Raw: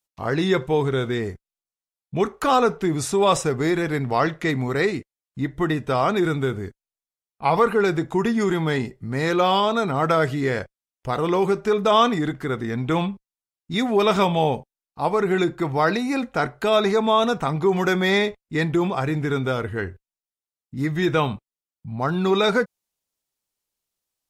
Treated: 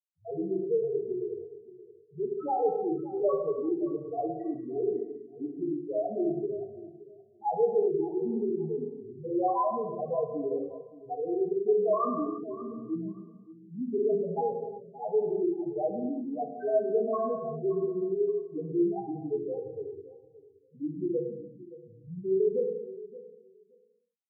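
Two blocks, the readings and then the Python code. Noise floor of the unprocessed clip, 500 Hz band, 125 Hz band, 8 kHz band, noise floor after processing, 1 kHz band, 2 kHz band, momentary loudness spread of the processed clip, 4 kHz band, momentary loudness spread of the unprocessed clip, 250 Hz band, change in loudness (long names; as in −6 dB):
below −85 dBFS, −6.0 dB, −19.0 dB, below −40 dB, −60 dBFS, −12.0 dB, below −35 dB, 15 LU, below −40 dB, 10 LU, −9.5 dB, −9.0 dB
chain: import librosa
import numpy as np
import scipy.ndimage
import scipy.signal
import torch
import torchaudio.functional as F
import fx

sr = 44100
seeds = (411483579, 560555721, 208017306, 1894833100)

y = fx.peak_eq(x, sr, hz=5000.0, db=-14.5, octaves=2.7)
y = fx.spec_topn(y, sr, count=1)
y = fx.bandpass_edges(y, sr, low_hz=340.0, high_hz=6500.0)
y = fx.echo_feedback(y, sr, ms=573, feedback_pct=15, wet_db=-17)
y = fx.rev_gated(y, sr, seeds[0], gate_ms=400, shape='falling', drr_db=0.0)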